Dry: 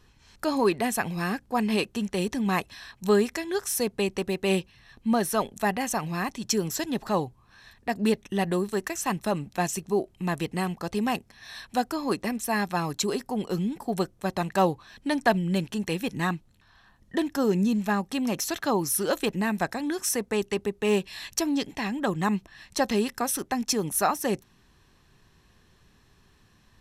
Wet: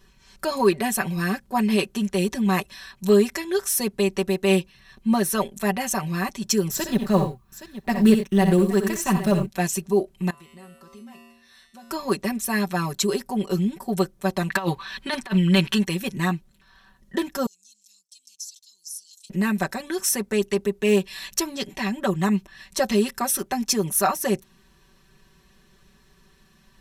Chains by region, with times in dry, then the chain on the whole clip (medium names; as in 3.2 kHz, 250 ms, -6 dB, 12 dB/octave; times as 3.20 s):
6.70–9.46 s: companding laws mixed up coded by A + bass shelf 230 Hz +9.5 dB + multi-tap echo 64/90/819 ms -9/-11.5/-14.5 dB
10.30–11.91 s: feedback comb 78 Hz, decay 0.68 s, harmonics odd, mix 90% + compression 2.5:1, threshold -48 dBFS
14.50–15.84 s: high-order bell 2 kHz +9 dB 2.6 oct + compressor with a negative ratio -23 dBFS, ratio -0.5
17.46–19.30 s: inverse Chebyshev high-pass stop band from 1.7 kHz, stop band 60 dB + distance through air 91 m
whole clip: treble shelf 11 kHz +6.5 dB; band-stop 820 Hz, Q 12; comb 5.2 ms, depth 92%